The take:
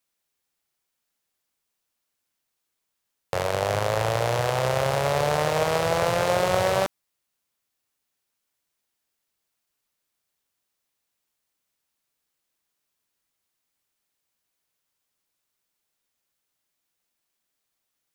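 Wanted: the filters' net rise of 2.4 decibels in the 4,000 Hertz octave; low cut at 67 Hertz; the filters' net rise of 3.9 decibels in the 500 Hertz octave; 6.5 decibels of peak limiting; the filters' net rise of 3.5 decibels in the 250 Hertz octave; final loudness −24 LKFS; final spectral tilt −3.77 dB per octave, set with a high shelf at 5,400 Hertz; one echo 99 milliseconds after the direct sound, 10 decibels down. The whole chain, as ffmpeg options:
ffmpeg -i in.wav -af "highpass=67,equalizer=frequency=250:width_type=o:gain=5.5,equalizer=frequency=500:width_type=o:gain=3.5,equalizer=frequency=4000:width_type=o:gain=6,highshelf=frequency=5400:gain=-7.5,alimiter=limit=-11.5dB:level=0:latency=1,aecho=1:1:99:0.316,volume=-0.5dB" out.wav

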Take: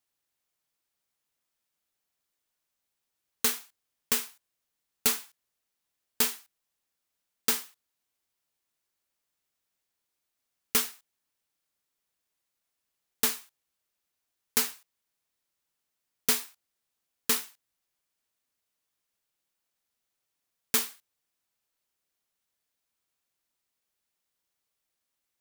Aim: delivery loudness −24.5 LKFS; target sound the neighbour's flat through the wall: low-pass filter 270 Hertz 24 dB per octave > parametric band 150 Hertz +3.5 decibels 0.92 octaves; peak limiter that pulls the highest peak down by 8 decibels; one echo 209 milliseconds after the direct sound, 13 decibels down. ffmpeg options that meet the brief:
ffmpeg -i in.wav -af "alimiter=limit=-17.5dB:level=0:latency=1,lowpass=frequency=270:width=0.5412,lowpass=frequency=270:width=1.3066,equalizer=frequency=150:width_type=o:width=0.92:gain=3.5,aecho=1:1:209:0.224,volume=29dB" out.wav

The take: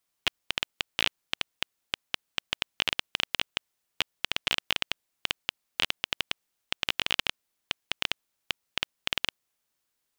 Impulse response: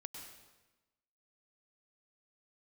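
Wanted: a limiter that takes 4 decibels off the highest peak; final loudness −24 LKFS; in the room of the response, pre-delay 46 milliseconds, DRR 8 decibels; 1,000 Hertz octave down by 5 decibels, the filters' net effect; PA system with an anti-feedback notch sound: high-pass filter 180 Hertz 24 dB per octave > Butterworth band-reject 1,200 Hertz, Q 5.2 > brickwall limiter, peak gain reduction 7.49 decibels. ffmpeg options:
-filter_complex "[0:a]equalizer=frequency=1000:width_type=o:gain=-4.5,alimiter=limit=-11dB:level=0:latency=1,asplit=2[link_01][link_02];[1:a]atrim=start_sample=2205,adelay=46[link_03];[link_02][link_03]afir=irnorm=-1:irlink=0,volume=-4dB[link_04];[link_01][link_04]amix=inputs=2:normalize=0,highpass=frequency=180:width=0.5412,highpass=frequency=180:width=1.3066,asuperstop=centerf=1200:order=8:qfactor=5.2,volume=17dB,alimiter=limit=-3dB:level=0:latency=1"

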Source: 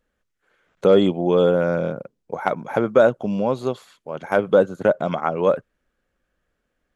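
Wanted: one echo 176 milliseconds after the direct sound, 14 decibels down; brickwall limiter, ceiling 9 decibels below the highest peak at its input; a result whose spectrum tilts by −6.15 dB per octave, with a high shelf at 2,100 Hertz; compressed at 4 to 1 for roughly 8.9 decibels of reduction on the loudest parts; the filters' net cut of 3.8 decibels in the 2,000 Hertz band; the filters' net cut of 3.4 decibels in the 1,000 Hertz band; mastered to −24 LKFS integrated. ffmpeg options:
ffmpeg -i in.wav -af "equalizer=frequency=1000:width_type=o:gain=-4.5,equalizer=frequency=2000:width_type=o:gain=-6.5,highshelf=frequency=2100:gain=5.5,acompressor=threshold=-21dB:ratio=4,alimiter=limit=-17dB:level=0:latency=1,aecho=1:1:176:0.2,volume=5dB" out.wav

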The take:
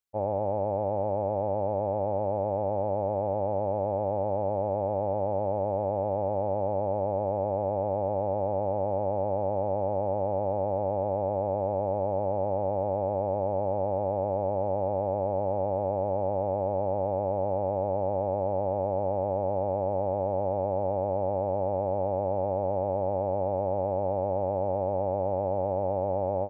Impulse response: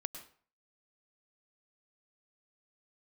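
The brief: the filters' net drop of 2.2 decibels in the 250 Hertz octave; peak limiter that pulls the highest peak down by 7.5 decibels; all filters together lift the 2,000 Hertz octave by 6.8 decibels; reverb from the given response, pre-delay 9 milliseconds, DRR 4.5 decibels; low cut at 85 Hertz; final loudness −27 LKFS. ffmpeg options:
-filter_complex "[0:a]highpass=85,equalizer=frequency=250:width_type=o:gain=-3,equalizer=frequency=2000:width_type=o:gain=9,alimiter=level_in=2dB:limit=-24dB:level=0:latency=1,volume=-2dB,asplit=2[link_01][link_02];[1:a]atrim=start_sample=2205,adelay=9[link_03];[link_02][link_03]afir=irnorm=-1:irlink=0,volume=-3.5dB[link_04];[link_01][link_04]amix=inputs=2:normalize=0,volume=7dB"

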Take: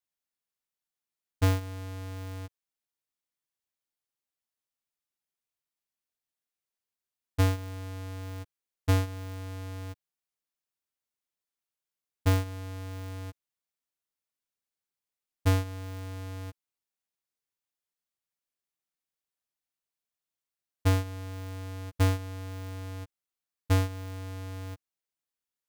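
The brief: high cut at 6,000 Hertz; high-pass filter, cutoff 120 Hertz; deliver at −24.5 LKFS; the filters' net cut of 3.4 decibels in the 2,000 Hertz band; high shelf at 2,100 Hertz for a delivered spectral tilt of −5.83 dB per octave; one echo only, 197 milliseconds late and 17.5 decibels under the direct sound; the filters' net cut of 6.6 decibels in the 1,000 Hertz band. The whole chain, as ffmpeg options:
ffmpeg -i in.wav -af "highpass=120,lowpass=6000,equalizer=frequency=1000:width_type=o:gain=-8.5,equalizer=frequency=2000:width_type=o:gain=-4,highshelf=frequency=2100:gain=4,aecho=1:1:197:0.133,volume=12.5dB" out.wav

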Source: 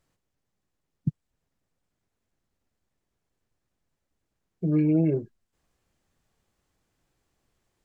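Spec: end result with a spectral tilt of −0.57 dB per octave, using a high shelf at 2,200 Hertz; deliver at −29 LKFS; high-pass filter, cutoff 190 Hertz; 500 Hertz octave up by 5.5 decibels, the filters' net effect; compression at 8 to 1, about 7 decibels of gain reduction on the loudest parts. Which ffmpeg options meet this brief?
ffmpeg -i in.wav -af "highpass=190,equalizer=frequency=500:width_type=o:gain=8,highshelf=frequency=2200:gain=-6.5,acompressor=threshold=-24dB:ratio=8,volume=2dB" out.wav

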